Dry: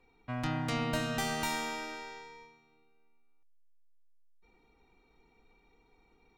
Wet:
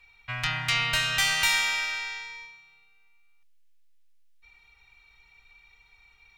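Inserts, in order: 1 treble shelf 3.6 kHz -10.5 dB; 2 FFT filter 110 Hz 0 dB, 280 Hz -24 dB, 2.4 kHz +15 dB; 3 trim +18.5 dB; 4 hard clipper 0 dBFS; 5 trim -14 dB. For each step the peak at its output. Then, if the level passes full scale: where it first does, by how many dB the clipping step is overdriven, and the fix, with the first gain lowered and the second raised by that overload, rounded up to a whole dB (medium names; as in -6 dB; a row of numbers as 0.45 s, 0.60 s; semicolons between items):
-19.5 dBFS, -13.5 dBFS, +5.0 dBFS, 0.0 dBFS, -14.0 dBFS; step 3, 5.0 dB; step 3 +13.5 dB, step 5 -9 dB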